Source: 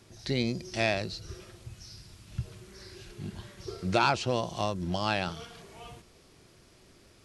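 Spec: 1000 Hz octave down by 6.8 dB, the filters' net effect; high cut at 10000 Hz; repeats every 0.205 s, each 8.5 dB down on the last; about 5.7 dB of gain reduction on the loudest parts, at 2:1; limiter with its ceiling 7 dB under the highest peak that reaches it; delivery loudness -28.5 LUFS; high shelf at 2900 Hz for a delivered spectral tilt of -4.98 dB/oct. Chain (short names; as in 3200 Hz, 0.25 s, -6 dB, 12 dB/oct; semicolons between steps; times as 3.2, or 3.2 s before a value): LPF 10000 Hz; bell 1000 Hz -9 dB; high shelf 2900 Hz -4.5 dB; compressor 2:1, threshold -34 dBFS; limiter -27 dBFS; feedback echo 0.205 s, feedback 38%, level -8.5 dB; gain +12.5 dB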